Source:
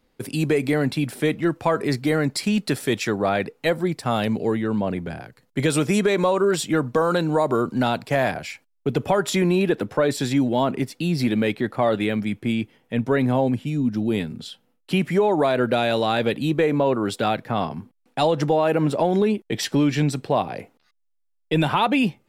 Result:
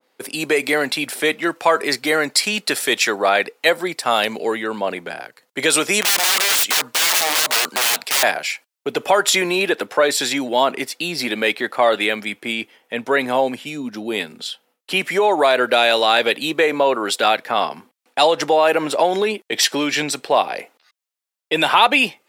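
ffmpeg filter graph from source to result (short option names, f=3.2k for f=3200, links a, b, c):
-filter_complex "[0:a]asettb=1/sr,asplit=3[a][b][c];[a]atrim=end=6.014[d];[b]atrim=start=6.01:end=8.23,asetpts=PTS-STARTPTS,afade=t=in:d=0.004:c=qsin,afade=t=out:st=2.216:d=0.004:c=qsin,tiltshelf=f=910:g=-3,aeval=exprs='(mod(12.6*val(0)+1,2)-1)/12.6':c=same[e];[c]atrim=start=8.226[f];[d][e]acrossfade=d=0.004:c1=hsin:c2=qsin[g];[g][f]acrossfade=d=0.004:c1=qsin:c2=hsin,highpass=500,adynamicequalizer=threshold=0.0158:dfrequency=1500:dqfactor=0.7:tfrequency=1500:tqfactor=0.7:attack=5:release=100:ratio=0.375:range=2.5:mode=boostabove:tftype=highshelf,volume=6.5dB"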